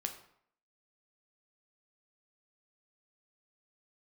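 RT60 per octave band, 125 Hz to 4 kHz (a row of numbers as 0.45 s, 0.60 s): 0.60 s, 0.60 s, 0.65 s, 0.65 s, 0.60 s, 0.50 s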